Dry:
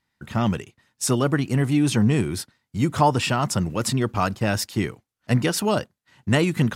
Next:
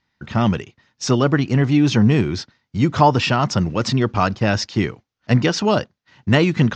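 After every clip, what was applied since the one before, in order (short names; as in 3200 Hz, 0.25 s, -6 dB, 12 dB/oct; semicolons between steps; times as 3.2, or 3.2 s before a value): steep low-pass 6300 Hz 48 dB/oct; gain +4.5 dB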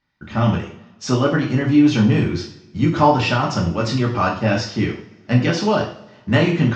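high shelf 6500 Hz -7.5 dB; two-slope reverb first 0.47 s, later 1.7 s, from -22 dB, DRR -3 dB; gain -4.5 dB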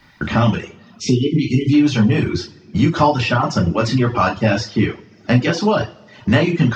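spectral delete 1.01–1.73, 470–2000 Hz; reverb removal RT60 0.65 s; three-band squash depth 70%; gain +2.5 dB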